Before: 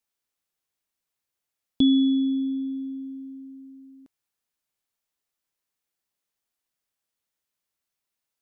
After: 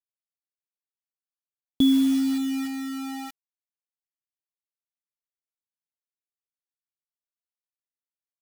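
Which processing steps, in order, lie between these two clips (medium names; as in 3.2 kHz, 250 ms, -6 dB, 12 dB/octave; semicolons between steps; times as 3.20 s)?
1.92–2.65 s: treble shelf 2.6 kHz -6 dB; bit crusher 6-bit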